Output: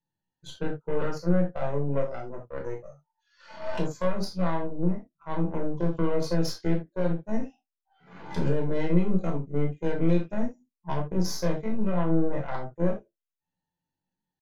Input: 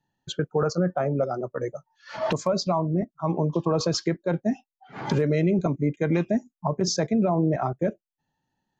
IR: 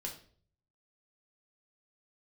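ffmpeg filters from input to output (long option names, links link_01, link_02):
-filter_complex "[0:a]aeval=exprs='0.282*(cos(1*acos(clip(val(0)/0.282,-1,1)))-cos(1*PI/2))+0.00316*(cos(2*acos(clip(val(0)/0.282,-1,1)))-cos(2*PI/2))+0.00562*(cos(3*acos(clip(val(0)/0.282,-1,1)))-cos(3*PI/2))+0.0501*(cos(4*acos(clip(val(0)/0.282,-1,1)))-cos(4*PI/2))+0.0141*(cos(7*acos(clip(val(0)/0.282,-1,1)))-cos(7*PI/2))':channel_layout=same,atempo=0.61[link_01];[1:a]atrim=start_sample=2205,atrim=end_sample=3969[link_02];[link_01][link_02]afir=irnorm=-1:irlink=0,volume=-4.5dB"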